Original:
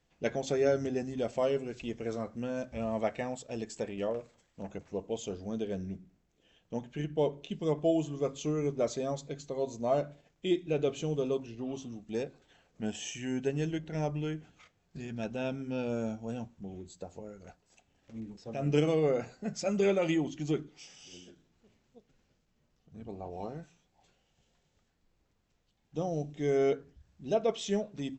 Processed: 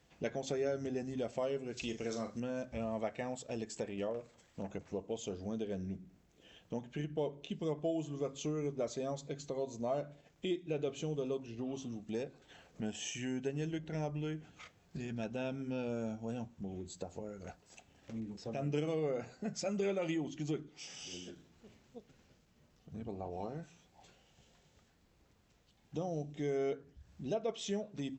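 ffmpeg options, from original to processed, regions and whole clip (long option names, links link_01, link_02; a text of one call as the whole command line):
ffmpeg -i in.wav -filter_complex "[0:a]asettb=1/sr,asplit=3[link_01][link_02][link_03];[link_01]atrim=end=1.774[link_04];[link_02]atrim=start=1.77:end=2.4,asetpts=PTS-STARTPTS,afade=type=in:duration=0.004:curve=qsin,afade=type=out:start_time=0.626:duration=0.004:curve=qsin,equalizer=frequency=5700:width_type=o:width=1.8:gain=11,asplit=2[link_05][link_06];[link_06]adelay=40,volume=-8.5dB[link_07];[link_05][link_07]amix=inputs=2:normalize=0,atrim=end_sample=27783[link_08];[link_03]atrim=start=2.396[link_09];[link_04][link_08]acrossfade=duration=0.004:curve1=hsin:curve2=qsin[link_10];[link_10][link_09]acrossfade=duration=0.004:curve1=qsin:curve2=hsin,highpass=41,acompressor=threshold=-51dB:ratio=2,volume=6.5dB" out.wav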